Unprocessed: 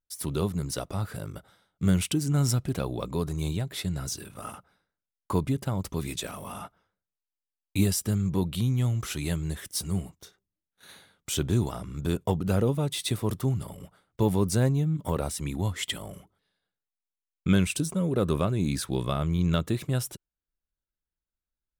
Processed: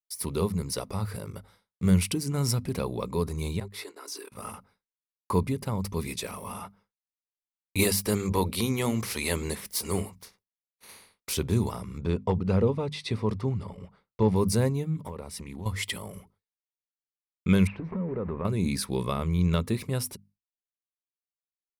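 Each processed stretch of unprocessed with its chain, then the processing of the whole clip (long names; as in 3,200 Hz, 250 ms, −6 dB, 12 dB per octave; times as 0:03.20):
0:03.60–0:04.32: Chebyshev high-pass with heavy ripple 280 Hz, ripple 6 dB + noise gate −48 dBFS, range −55 dB + level that may fall only so fast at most 60 dB per second
0:07.78–0:11.32: ceiling on every frequency bin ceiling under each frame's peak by 16 dB + mains-hum notches 60/120/180 Hz
0:11.98–0:14.36: hard clipping −14.5 dBFS + high-frequency loss of the air 130 metres
0:15.02–0:15.66: high-shelf EQ 5,100 Hz −7 dB + downward compressor 12 to 1, threshold −33 dBFS + highs frequency-modulated by the lows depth 0.18 ms
0:17.67–0:18.45: converter with a step at zero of −35.5 dBFS + downward compressor, threshold −28 dBFS + low-pass filter 2,000 Hz 24 dB per octave
whole clip: mains-hum notches 50/100/150/200/250 Hz; downward expander −56 dBFS; EQ curve with evenly spaced ripples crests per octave 0.88, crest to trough 7 dB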